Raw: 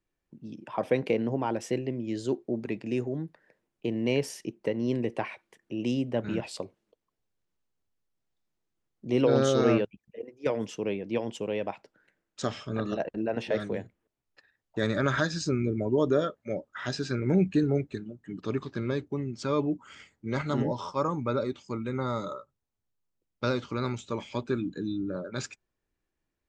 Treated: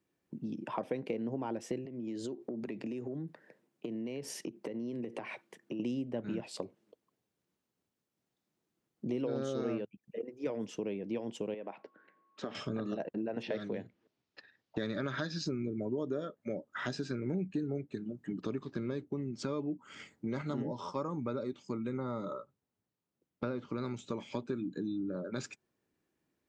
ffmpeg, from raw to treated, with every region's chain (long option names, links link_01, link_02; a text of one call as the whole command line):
ffmpeg -i in.wav -filter_complex "[0:a]asettb=1/sr,asplit=3[link_01][link_02][link_03];[link_01]atrim=end=1.854[link_04];[link_02]atrim=start=1.85:end=5.8,asetpts=PTS-STARTPTS,afade=type=in:duration=0.004:curve=qsin,afade=type=out:start_time=3.946:duration=0.004:curve=qsin,highpass=frequency=110:width=0.5412,highpass=frequency=110:width=1.3066,acompressor=threshold=-39dB:ratio=8:attack=3.2:release=140:knee=1:detection=peak[link_05];[link_03]atrim=start=5.796[link_06];[link_04][link_05]acrossfade=duration=0.004:curve1=hsin:curve2=qsin[link_07];[link_07][link_06]acrossfade=duration=0.004:curve1=qsin:curve2=hsin,asettb=1/sr,asplit=3[link_08][link_09][link_10];[link_08]atrim=end=11.544[link_11];[link_09]atrim=start=11.54:end=12.55,asetpts=PTS-STARTPTS,afade=type=in:duration=0.004:curve=qsin,afade=type=out:start_time=1.006:duration=0.004:curve=qsin,acompressor=threshold=-40dB:ratio=2:attack=3.2:release=140:knee=1:detection=peak,highpass=240,lowpass=2800,aeval=exprs='val(0)+0.000251*sin(2*PI*1100*n/s)':channel_layout=same[link_12];[link_10]atrim=start=12.546[link_13];[link_11][link_12]acrossfade=duration=0.004:curve1=hsin:curve2=qsin[link_14];[link_14][link_13]acrossfade=duration=0.004:curve1=qsin:curve2=hsin,asettb=1/sr,asplit=3[link_15][link_16][link_17];[link_15]atrim=end=13.434[link_18];[link_16]atrim=start=13.43:end=15.47,asetpts=PTS-STARTPTS,afade=type=in:duration=0.004:curve=qsin,afade=type=out:start_time=2.036:duration=0.004:curve=qsin,lowpass=frequency=5100:width=0.5412,lowpass=frequency=5100:width=1.3066,highshelf=frequency=3200:gain=9.5[link_19];[link_17]atrim=start=15.466[link_20];[link_18][link_19]acrossfade=duration=0.004:curve1=hsin:curve2=qsin[link_21];[link_21][link_20]acrossfade=duration=0.004:curve1=qsin:curve2=hsin,asettb=1/sr,asplit=3[link_22][link_23][link_24];[link_22]atrim=end=21.974[link_25];[link_23]atrim=start=21.97:end=23.78,asetpts=PTS-STARTPTS,afade=type=in:duration=0.004:curve=qsin,afade=type=out:start_time=1.806:duration=0.004:curve=qsin,acrossover=split=3200[link_26][link_27];[link_27]acompressor=threshold=-54dB:ratio=4:attack=1:release=60[link_28];[link_26][link_28]amix=inputs=2:normalize=0,highshelf=frequency=3800:gain=-7[link_29];[link_24]atrim=start=23.776[link_30];[link_25][link_29]acrossfade=duration=0.004:curve1=hsin:curve2=qsin[link_31];[link_31][link_30]acrossfade=duration=0.004:curve1=qsin:curve2=hsin,highpass=190,lowshelf=frequency=340:gain=11,acompressor=threshold=-37dB:ratio=4,volume=1.5dB" out.wav